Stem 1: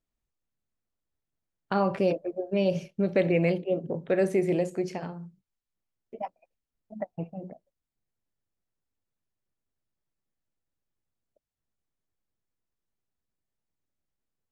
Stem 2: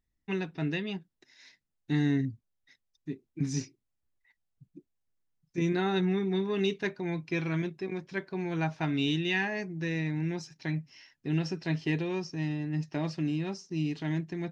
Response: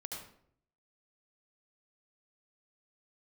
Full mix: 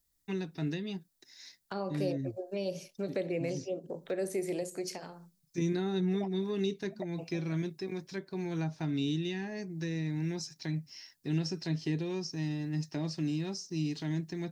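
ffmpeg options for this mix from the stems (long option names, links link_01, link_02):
-filter_complex "[0:a]highpass=frequency=970:poles=1,volume=2dB,asplit=2[link_01][link_02];[1:a]volume=-2dB[link_03];[link_02]apad=whole_len=640329[link_04];[link_03][link_04]sidechaincompress=threshold=-32dB:ratio=4:attack=8.1:release=418[link_05];[link_01][link_05]amix=inputs=2:normalize=0,acrossover=split=490[link_06][link_07];[link_07]acompressor=threshold=-45dB:ratio=4[link_08];[link_06][link_08]amix=inputs=2:normalize=0,aexciter=amount=4.5:drive=1.4:freq=3900"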